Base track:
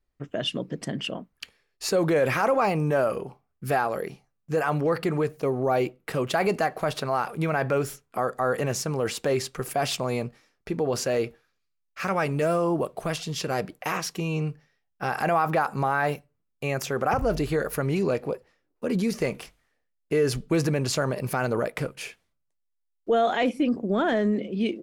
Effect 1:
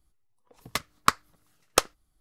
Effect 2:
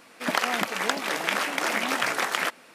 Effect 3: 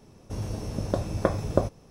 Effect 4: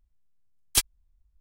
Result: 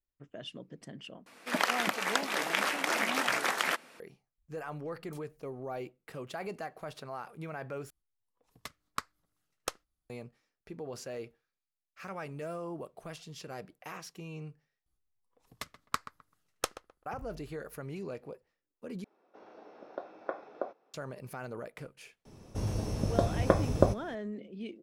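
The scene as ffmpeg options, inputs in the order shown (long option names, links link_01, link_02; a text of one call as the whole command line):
ffmpeg -i bed.wav -i cue0.wav -i cue1.wav -i cue2.wav -i cue3.wav -filter_complex "[1:a]asplit=2[link_01][link_02];[3:a]asplit=2[link_03][link_04];[0:a]volume=-15.5dB[link_05];[4:a]acompressor=threshold=-49dB:ratio=6:attack=3.2:release=140:knee=1:detection=peak[link_06];[link_02]asplit=2[link_07][link_08];[link_08]adelay=129,lowpass=frequency=1800:poles=1,volume=-13dB,asplit=2[link_09][link_10];[link_10]adelay=129,lowpass=frequency=1800:poles=1,volume=0.25,asplit=2[link_11][link_12];[link_12]adelay=129,lowpass=frequency=1800:poles=1,volume=0.25[link_13];[link_07][link_09][link_11][link_13]amix=inputs=4:normalize=0[link_14];[link_03]highpass=frequency=330:width=0.5412,highpass=frequency=330:width=1.3066,equalizer=frequency=760:width_type=q:width=4:gain=6,equalizer=frequency=1400:width_type=q:width=4:gain=8,equalizer=frequency=3000:width_type=q:width=4:gain=-6,lowpass=frequency=3500:width=0.5412,lowpass=frequency=3500:width=1.3066[link_15];[link_05]asplit=5[link_16][link_17][link_18][link_19][link_20];[link_16]atrim=end=1.264[link_21];[2:a]atrim=end=2.74,asetpts=PTS-STARTPTS,volume=-4dB[link_22];[link_17]atrim=start=3.996:end=7.904[link_23];[link_01]atrim=end=2.2,asetpts=PTS-STARTPTS,volume=-15dB[link_24];[link_18]atrim=start=10.096:end=14.864[link_25];[link_14]atrim=end=2.2,asetpts=PTS-STARTPTS,volume=-12dB[link_26];[link_19]atrim=start=17.056:end=19.044[link_27];[link_15]atrim=end=1.9,asetpts=PTS-STARTPTS,volume=-13dB[link_28];[link_20]atrim=start=20.936[link_29];[link_06]atrim=end=1.4,asetpts=PTS-STARTPTS,volume=-8.5dB,afade=type=in:duration=0.004:curve=hsin,afade=type=out:start_time=1.396:duration=0.004:curve=hsin,adelay=4380[link_30];[link_04]atrim=end=1.9,asetpts=PTS-STARTPTS,volume=-0.5dB,afade=type=in:duration=0.004:curve=hsin,afade=type=out:start_time=1.896:duration=0.004:curve=hsin,adelay=22250[link_31];[link_21][link_22]acrossfade=duration=0.004:curve1=hsin:curve2=hsin[link_32];[link_32][link_23]acrossfade=duration=0.004:curve1=hsin:curve2=hsin[link_33];[link_33][link_24]acrossfade=duration=0.004:curve1=hsin:curve2=hsin[link_34];[link_34][link_25]acrossfade=duration=0.004:curve1=hsin:curve2=hsin[link_35];[link_35][link_26]acrossfade=duration=0.004:curve1=hsin:curve2=hsin[link_36];[link_36][link_27]acrossfade=duration=0.004:curve1=hsin:curve2=hsin[link_37];[link_37][link_28]acrossfade=duration=0.004:curve1=hsin:curve2=hsin[link_38];[link_38][link_29]acrossfade=duration=0.004:curve1=hsin:curve2=hsin[link_39];[link_39][link_30][link_31]amix=inputs=3:normalize=0" out.wav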